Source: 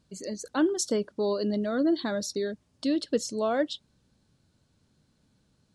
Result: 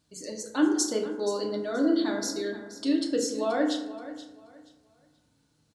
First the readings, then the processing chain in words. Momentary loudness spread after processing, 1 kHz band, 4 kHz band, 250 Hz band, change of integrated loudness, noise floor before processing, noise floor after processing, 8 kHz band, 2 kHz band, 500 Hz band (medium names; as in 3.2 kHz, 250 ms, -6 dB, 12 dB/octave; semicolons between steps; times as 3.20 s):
13 LU, +0.5 dB, +1.5 dB, +2.0 dB, +1.0 dB, -70 dBFS, -69 dBFS, +3.0 dB, +1.5 dB, -0.5 dB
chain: tilt EQ +1.5 dB/octave; feedback delay 478 ms, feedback 25%, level -14.5 dB; FDN reverb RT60 0.96 s, low-frequency decay 1.05×, high-frequency decay 0.4×, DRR -0.5 dB; trim -3.5 dB